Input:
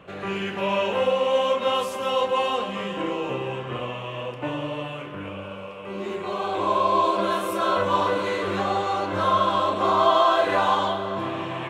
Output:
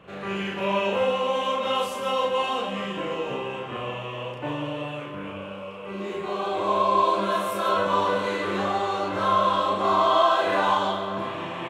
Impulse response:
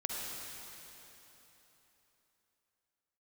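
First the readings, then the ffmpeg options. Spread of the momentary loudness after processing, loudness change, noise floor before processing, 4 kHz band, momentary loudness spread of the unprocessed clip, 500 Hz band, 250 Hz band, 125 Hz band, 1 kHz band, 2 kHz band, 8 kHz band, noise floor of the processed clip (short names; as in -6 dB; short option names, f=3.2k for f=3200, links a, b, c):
12 LU, -1.0 dB, -36 dBFS, -1.0 dB, 12 LU, -1.5 dB, -1.0 dB, -2.0 dB, -0.5 dB, -0.5 dB, -0.5 dB, -36 dBFS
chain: -af "aecho=1:1:34.99|154.5:0.794|0.316,volume=-3dB"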